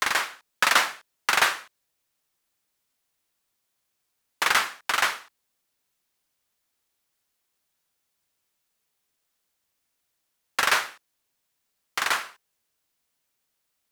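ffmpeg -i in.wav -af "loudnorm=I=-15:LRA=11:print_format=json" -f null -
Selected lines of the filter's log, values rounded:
"input_i" : "-24.5",
"input_tp" : "-3.4",
"input_lra" : "5.5",
"input_thresh" : "-35.4",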